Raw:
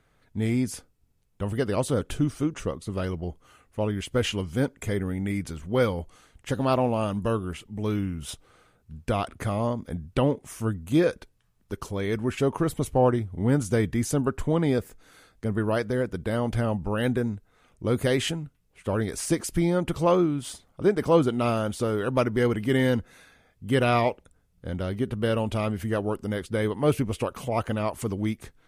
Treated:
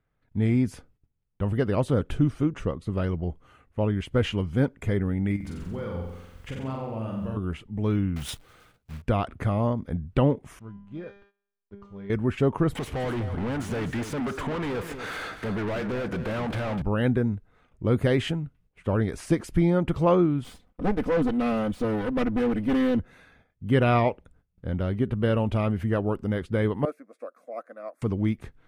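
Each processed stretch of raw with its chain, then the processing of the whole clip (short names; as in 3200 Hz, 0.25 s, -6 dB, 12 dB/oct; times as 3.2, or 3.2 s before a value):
5.36–7.37 requantised 10-bit, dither triangular + compressor 4:1, threshold -35 dBFS + flutter echo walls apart 7.7 m, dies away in 0.91 s
8.16–9.02 block floating point 3-bit + high shelf 2400 Hz +12 dB
10.59–12.1 backlash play -41.5 dBFS + air absorption 94 m + resonator 200 Hz, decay 0.81 s, mix 90%
12.75–16.82 compressor 2:1, threshold -44 dBFS + overdrive pedal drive 36 dB, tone 7500 Hz, clips at -24 dBFS + echo 0.249 s -10.5 dB
20.44–22.99 minimum comb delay 4 ms + bell 1200 Hz -3.5 dB 2 oct + hard clip -20 dBFS
26.85–28.02 ladder high-pass 340 Hz, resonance 30% + fixed phaser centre 600 Hz, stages 8 + upward expander, over -46 dBFS
whole clip: tone controls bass +4 dB, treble -13 dB; gate -58 dBFS, range -13 dB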